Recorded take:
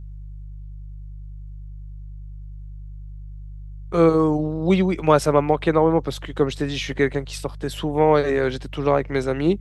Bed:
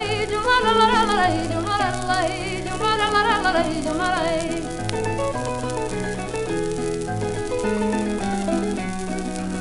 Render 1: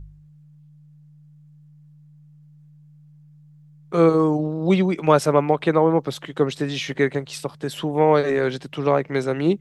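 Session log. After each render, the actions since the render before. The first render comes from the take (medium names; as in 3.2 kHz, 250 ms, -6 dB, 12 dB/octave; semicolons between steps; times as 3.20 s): de-hum 50 Hz, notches 2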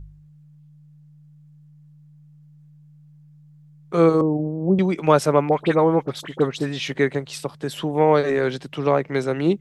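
4.21–4.79 s: Bessel low-pass 580 Hz, order 8; 5.49–6.88 s: phase dispersion highs, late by 43 ms, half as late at 1.5 kHz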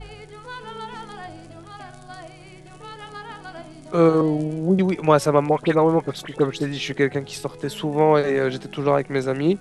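add bed -18.5 dB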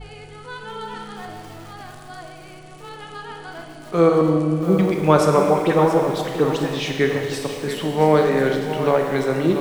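Schroeder reverb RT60 1.9 s, combs from 26 ms, DRR 3 dB; bit-crushed delay 684 ms, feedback 35%, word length 6-bit, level -10 dB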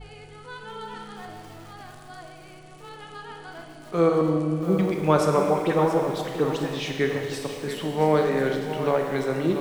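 trim -5 dB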